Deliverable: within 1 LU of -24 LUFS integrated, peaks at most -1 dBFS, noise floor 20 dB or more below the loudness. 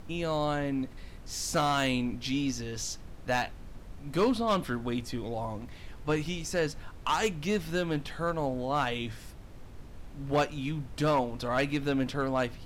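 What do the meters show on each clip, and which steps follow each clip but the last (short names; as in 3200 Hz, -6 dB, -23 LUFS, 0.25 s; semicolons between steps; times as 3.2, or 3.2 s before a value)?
clipped 0.6%; flat tops at -20.0 dBFS; noise floor -47 dBFS; noise floor target -51 dBFS; loudness -31.0 LUFS; peak -20.0 dBFS; loudness target -24.0 LUFS
-> clip repair -20 dBFS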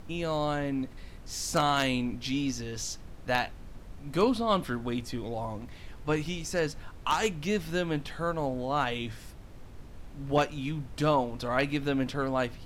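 clipped 0.0%; noise floor -47 dBFS; noise floor target -51 dBFS
-> noise print and reduce 6 dB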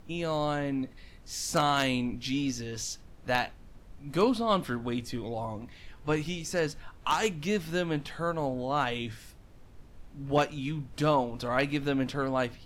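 noise floor -52 dBFS; loudness -30.5 LUFS; peak -11.0 dBFS; loudness target -24.0 LUFS
-> gain +6.5 dB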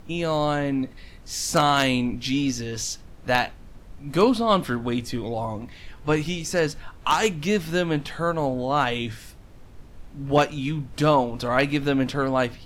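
loudness -24.0 LUFS; peak -4.5 dBFS; noise floor -45 dBFS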